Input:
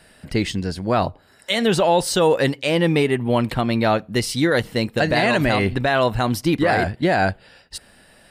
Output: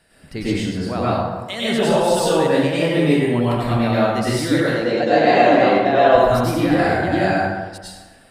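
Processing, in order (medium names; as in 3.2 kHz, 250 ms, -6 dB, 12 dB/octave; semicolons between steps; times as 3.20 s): 4.59–6.08 s: cabinet simulation 230–6600 Hz, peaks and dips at 330 Hz +5 dB, 510 Hz +7 dB, 730 Hz +8 dB; plate-style reverb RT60 1.3 s, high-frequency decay 0.55×, pre-delay 85 ms, DRR -8.5 dB; trim -8.5 dB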